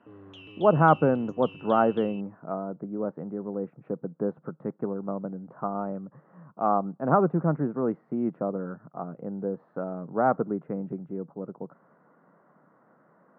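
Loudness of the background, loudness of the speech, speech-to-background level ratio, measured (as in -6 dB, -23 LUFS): -47.0 LUFS, -28.5 LUFS, 18.5 dB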